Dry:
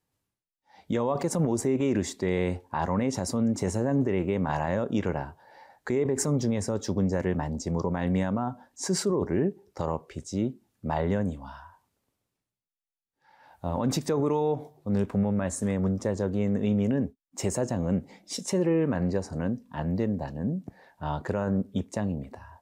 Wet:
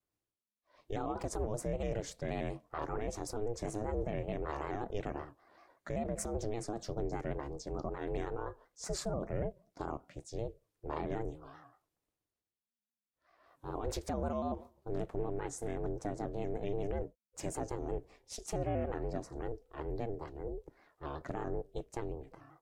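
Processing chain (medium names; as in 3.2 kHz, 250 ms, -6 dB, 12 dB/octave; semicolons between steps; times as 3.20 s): ring modulator 220 Hz; vibrato with a chosen wave square 5.2 Hz, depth 100 cents; trim -7.5 dB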